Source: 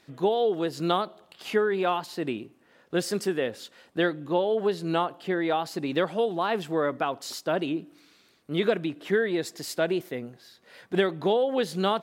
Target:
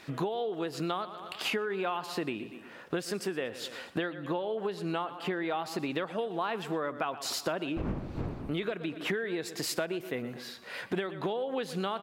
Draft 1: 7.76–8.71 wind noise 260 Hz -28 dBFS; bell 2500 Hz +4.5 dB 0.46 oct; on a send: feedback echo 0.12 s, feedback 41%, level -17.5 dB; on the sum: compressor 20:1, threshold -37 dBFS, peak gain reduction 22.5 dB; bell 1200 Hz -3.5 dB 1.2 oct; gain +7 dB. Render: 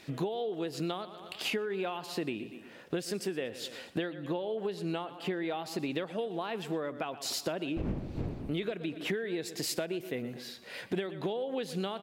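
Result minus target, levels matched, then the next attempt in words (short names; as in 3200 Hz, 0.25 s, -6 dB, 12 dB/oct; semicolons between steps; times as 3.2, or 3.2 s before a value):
1000 Hz band -3.5 dB
7.76–8.71 wind noise 260 Hz -28 dBFS; bell 2500 Hz +4.5 dB 0.46 oct; on a send: feedback echo 0.12 s, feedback 41%, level -17.5 dB; on the sum: compressor 20:1, threshold -37 dBFS, peak gain reduction 22.5 dB; bell 1200 Hz +4.5 dB 1.2 oct; gain +7 dB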